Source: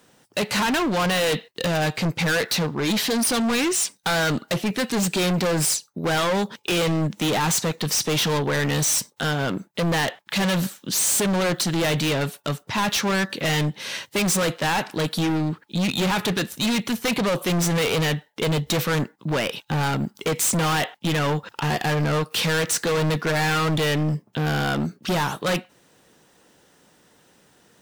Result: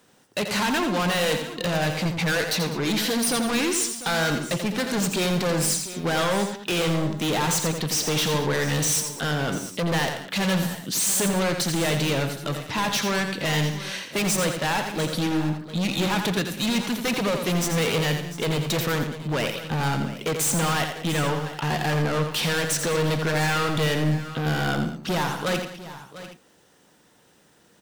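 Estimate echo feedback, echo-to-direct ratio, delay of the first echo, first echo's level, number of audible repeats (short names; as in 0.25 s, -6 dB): no steady repeat, -5.5 dB, 85 ms, -7.0 dB, 5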